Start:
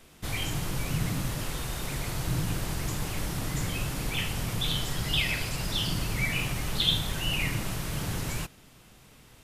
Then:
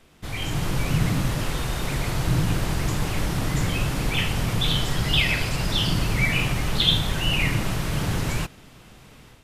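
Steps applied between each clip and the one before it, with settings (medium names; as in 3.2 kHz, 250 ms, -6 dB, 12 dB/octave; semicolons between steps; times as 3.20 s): treble shelf 6.2 kHz -8.5 dB; level rider gain up to 7.5 dB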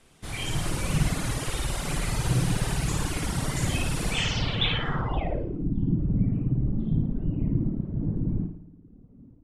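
flutter echo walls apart 9.5 m, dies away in 1.2 s; low-pass sweep 9.8 kHz -> 260 Hz, 4.10–5.73 s; reverb removal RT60 0.9 s; trim -4 dB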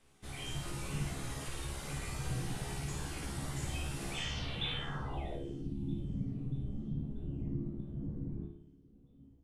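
feedback comb 69 Hz, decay 0.32 s, harmonics all, mix 90%; feedback echo behind a high-pass 636 ms, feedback 52%, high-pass 3.4 kHz, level -21 dB; in parallel at -2.5 dB: compression, threshold -41 dBFS, peak gain reduction 14 dB; on the sum: trim -6 dB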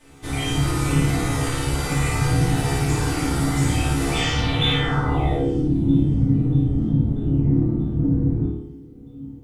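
in parallel at -10 dB: hard clipper -39 dBFS, distortion -9 dB; on the sum: FDN reverb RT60 0.57 s, low-frequency decay 1.25×, high-frequency decay 0.4×, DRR -6.5 dB; trim +8.5 dB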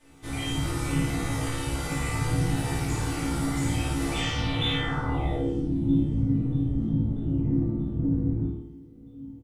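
doubling 18 ms -7.5 dB; trim -7 dB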